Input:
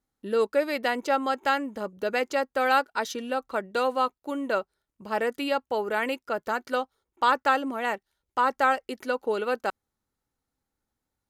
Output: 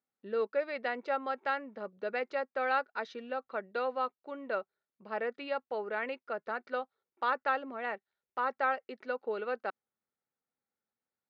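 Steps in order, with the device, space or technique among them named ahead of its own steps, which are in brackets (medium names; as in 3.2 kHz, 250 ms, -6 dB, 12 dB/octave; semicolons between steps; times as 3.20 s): kitchen radio (cabinet simulation 220–3700 Hz, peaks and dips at 300 Hz -9 dB, 940 Hz -5 dB, 3.1 kHz -8 dB); trim -6.5 dB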